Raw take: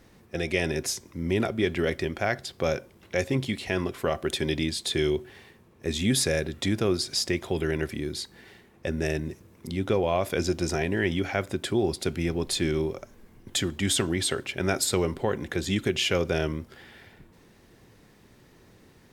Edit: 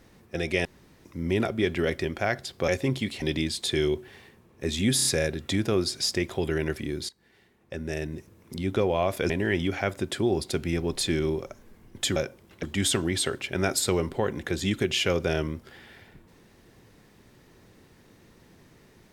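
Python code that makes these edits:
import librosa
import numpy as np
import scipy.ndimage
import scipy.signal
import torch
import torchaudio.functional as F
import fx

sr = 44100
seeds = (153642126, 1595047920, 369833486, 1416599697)

y = fx.edit(x, sr, fx.room_tone_fill(start_s=0.65, length_s=0.4),
    fx.move(start_s=2.68, length_s=0.47, to_s=13.68),
    fx.cut(start_s=3.69, length_s=0.75),
    fx.stutter(start_s=6.18, slice_s=0.03, count=4),
    fx.fade_in_from(start_s=8.22, length_s=1.51, floor_db=-17.0),
    fx.cut(start_s=10.43, length_s=0.39), tone=tone)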